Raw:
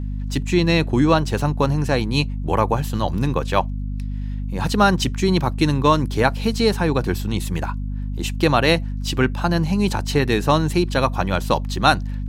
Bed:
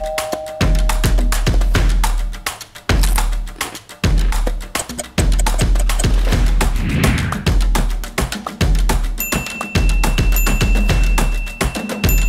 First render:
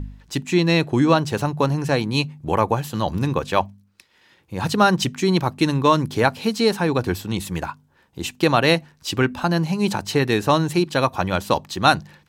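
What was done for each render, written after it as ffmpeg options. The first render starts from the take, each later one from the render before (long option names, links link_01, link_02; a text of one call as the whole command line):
ffmpeg -i in.wav -af "bandreject=frequency=50:width_type=h:width=4,bandreject=frequency=100:width_type=h:width=4,bandreject=frequency=150:width_type=h:width=4,bandreject=frequency=200:width_type=h:width=4,bandreject=frequency=250:width_type=h:width=4" out.wav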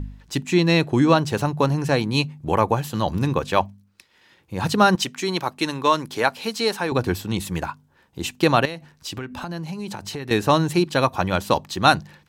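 ffmpeg -i in.wav -filter_complex "[0:a]asettb=1/sr,asplit=3[link_01][link_02][link_03];[link_01]atrim=end=4.954[link_04];[link_02]atrim=start=4.95:end=6.92,asetpts=PTS-STARTPTS,afade=type=in:duration=0.004:curve=qsin,afade=type=out:start_time=1.966:duration=0.004:curve=qsin,highpass=frequency=550:poles=1[link_05];[link_03]atrim=start=6.916[link_06];[link_04][link_05]acrossfade=duration=0.004:curve1=hsin:curve2=qsin[link_07];[link_07][link_06]acrossfade=duration=0.004:curve1=qsin:curve2=hsin,asettb=1/sr,asplit=3[link_08][link_09][link_10];[link_08]atrim=end=8.654[link_11];[link_09]atrim=start=8.65:end=10.31,asetpts=PTS-STARTPTS,afade=type=in:duration=0.004:curve=qsin,afade=type=out:start_time=1.656:duration=0.004:curve=qsin,acompressor=threshold=-28dB:ratio=6:attack=3.2:release=140:knee=1:detection=peak[link_12];[link_10]atrim=start=10.306[link_13];[link_11][link_12]acrossfade=duration=0.004:curve1=hsin:curve2=qsin[link_14];[link_14][link_13]acrossfade=duration=0.004:curve1=qsin:curve2=hsin" out.wav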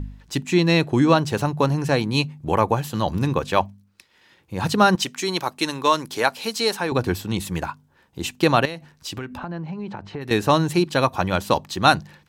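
ffmpeg -i in.wav -filter_complex "[0:a]asettb=1/sr,asplit=3[link_01][link_02][link_03];[link_01]atrim=end=5.064[link_04];[link_02]atrim=start=5.06:end=6.75,asetpts=PTS-STARTPTS,afade=type=in:duration=0.004:curve=qsin,afade=type=out:start_time=1.686:duration=0.004:curve=qsin,bass=frequency=250:gain=-3,treble=frequency=4000:gain=4[link_05];[link_03]atrim=start=6.746[link_06];[link_04][link_05]acrossfade=duration=0.004:curve1=hsin:curve2=qsin[link_07];[link_07][link_06]acrossfade=duration=0.004:curve1=qsin:curve2=hsin,asplit=3[link_08][link_09][link_10];[link_08]afade=type=out:start_time=9.36:duration=0.02[link_11];[link_09]lowpass=2000,afade=type=in:start_time=9.36:duration=0.02,afade=type=out:start_time=10.2:duration=0.02[link_12];[link_10]afade=type=in:start_time=10.2:duration=0.02[link_13];[link_11][link_12][link_13]amix=inputs=3:normalize=0" out.wav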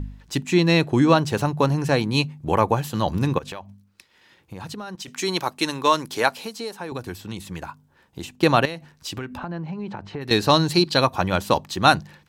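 ffmpeg -i in.wav -filter_complex "[0:a]asettb=1/sr,asplit=3[link_01][link_02][link_03];[link_01]atrim=end=3.384[link_04];[link_02]atrim=start=3.38:end=5.08,asetpts=PTS-STARTPTS,afade=type=in:duration=0.004:curve=qsin,afade=type=out:start_time=1.696:duration=0.004:curve=qsin,acompressor=threshold=-31dB:ratio=10:attack=3.2:release=140:knee=1:detection=peak[link_05];[link_03]atrim=start=5.076[link_06];[link_04][link_05]acrossfade=duration=0.004:curve1=hsin:curve2=qsin[link_07];[link_07][link_06]acrossfade=duration=0.004:curve1=qsin:curve2=hsin,asettb=1/sr,asplit=3[link_08][link_09][link_10];[link_08]atrim=end=6.384[link_11];[link_09]atrim=start=6.38:end=8.43,asetpts=PTS-STARTPTS,afade=type=in:duration=0.004:curve=qsin,afade=type=out:start_time=2.046:duration=0.004:curve=qsin,acrossover=split=1100|7000[link_12][link_13][link_14];[link_12]acompressor=threshold=-31dB:ratio=4[link_15];[link_13]acompressor=threshold=-40dB:ratio=4[link_16];[link_14]acompressor=threshold=-49dB:ratio=4[link_17];[link_15][link_16][link_17]amix=inputs=3:normalize=0[link_18];[link_10]atrim=start=8.426[link_19];[link_11][link_18]acrossfade=duration=0.004:curve1=hsin:curve2=qsin[link_20];[link_20][link_19]acrossfade=duration=0.004:curve1=qsin:curve2=hsin,asettb=1/sr,asplit=3[link_21][link_22][link_23];[link_21]atrim=end=10.284[link_24];[link_22]atrim=start=10.28:end=11.01,asetpts=PTS-STARTPTS,afade=type=in:duration=0.004:curve=qsin,afade=type=out:start_time=0.726:duration=0.004:curve=qsin,equalizer=frequency=4400:width_type=o:width=0.43:gain=13[link_25];[link_23]atrim=start=11.006[link_26];[link_24][link_25]acrossfade=duration=0.004:curve1=hsin:curve2=qsin[link_27];[link_27][link_26]acrossfade=duration=0.004:curve1=qsin:curve2=hsin" out.wav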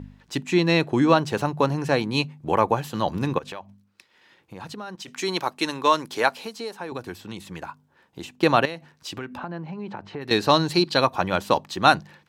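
ffmpeg -i in.wav -af "highpass=frequency=210:poles=1,highshelf=frequency=5400:gain=-7" out.wav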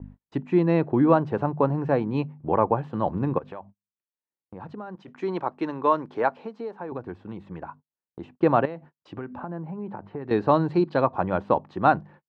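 ffmpeg -i in.wav -af "agate=range=-40dB:threshold=-44dB:ratio=16:detection=peak,lowpass=1100" out.wav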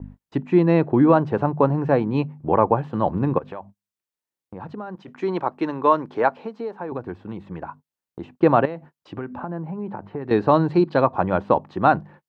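ffmpeg -i in.wav -af "volume=4dB,alimiter=limit=-3dB:level=0:latency=1" out.wav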